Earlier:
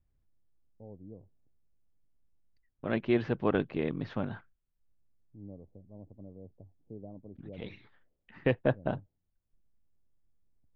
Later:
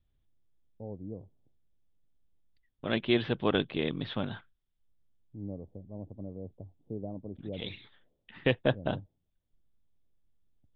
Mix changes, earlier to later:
first voice +7.0 dB
master: add low-pass with resonance 3,500 Hz, resonance Q 6.5

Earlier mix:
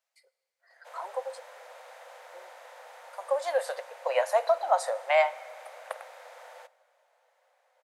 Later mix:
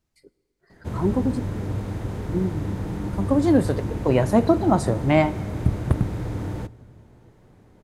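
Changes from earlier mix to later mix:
background +5.0 dB
master: remove Chebyshev high-pass with heavy ripple 510 Hz, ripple 3 dB

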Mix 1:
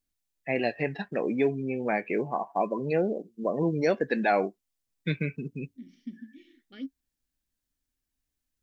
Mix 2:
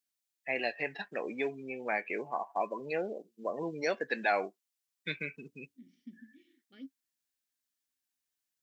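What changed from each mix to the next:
first voice: add high-pass filter 1,100 Hz 6 dB per octave
second voice −9.5 dB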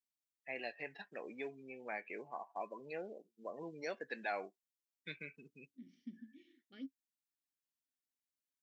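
first voice −10.5 dB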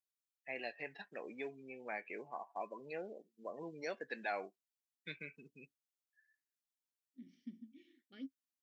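second voice: entry +1.40 s

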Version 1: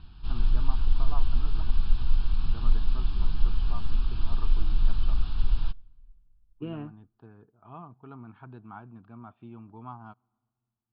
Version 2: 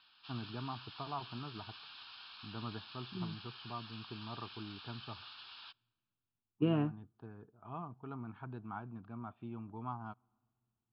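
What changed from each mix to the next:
second voice +5.5 dB
background: add high-pass filter 1,500 Hz 12 dB per octave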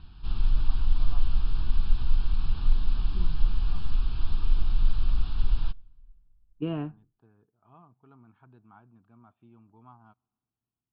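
first voice −10.5 dB
background: remove high-pass filter 1,500 Hz 12 dB per octave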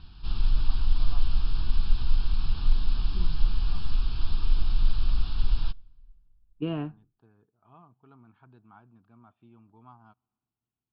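master: remove high-frequency loss of the air 180 metres

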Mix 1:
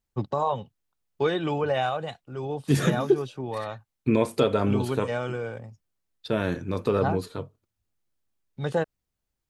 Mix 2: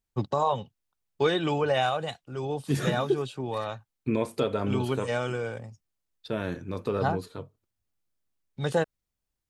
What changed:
first voice: add high-shelf EQ 3,800 Hz +9 dB
second voice −5.0 dB

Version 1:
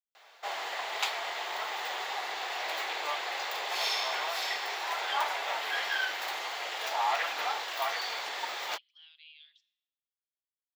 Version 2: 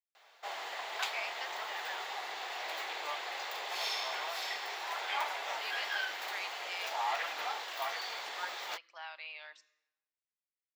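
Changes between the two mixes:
speech: remove four-pole ladder band-pass 3,400 Hz, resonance 85%
background −5.0 dB

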